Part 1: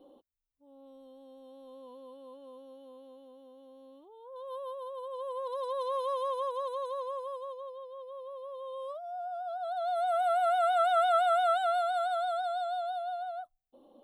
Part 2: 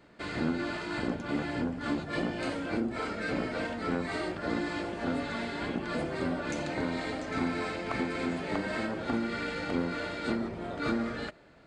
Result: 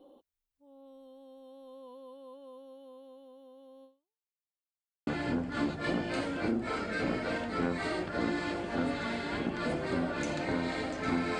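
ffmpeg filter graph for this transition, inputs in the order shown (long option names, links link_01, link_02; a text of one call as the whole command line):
ffmpeg -i cue0.wav -i cue1.wav -filter_complex "[0:a]apad=whole_dur=11.39,atrim=end=11.39,asplit=2[link_01][link_02];[link_01]atrim=end=4.44,asetpts=PTS-STARTPTS,afade=type=out:start_time=3.84:duration=0.6:curve=exp[link_03];[link_02]atrim=start=4.44:end=5.07,asetpts=PTS-STARTPTS,volume=0[link_04];[1:a]atrim=start=1.36:end=7.68,asetpts=PTS-STARTPTS,afade=type=in:duration=0.004:curve=hsin[link_05];[link_03][link_04][link_05]concat=n=3:v=0:a=1" out.wav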